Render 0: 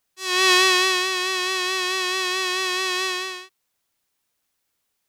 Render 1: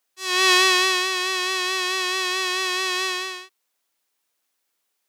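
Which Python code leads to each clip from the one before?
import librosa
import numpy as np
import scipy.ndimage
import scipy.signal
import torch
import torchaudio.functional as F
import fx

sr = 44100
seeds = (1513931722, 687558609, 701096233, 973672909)

y = scipy.signal.sosfilt(scipy.signal.butter(2, 290.0, 'highpass', fs=sr, output='sos'), x)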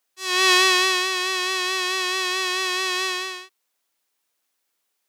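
y = x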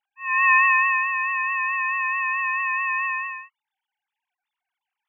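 y = fx.sine_speech(x, sr)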